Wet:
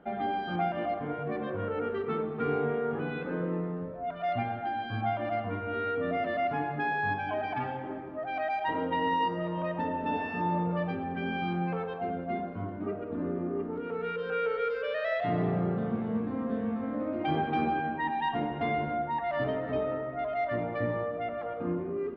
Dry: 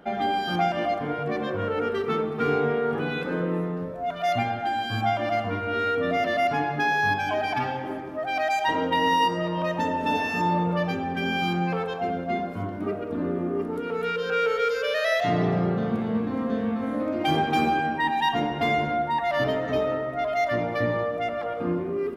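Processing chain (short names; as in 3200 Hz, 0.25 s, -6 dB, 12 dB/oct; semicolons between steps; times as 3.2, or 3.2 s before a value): air absorption 400 m; gain -4.5 dB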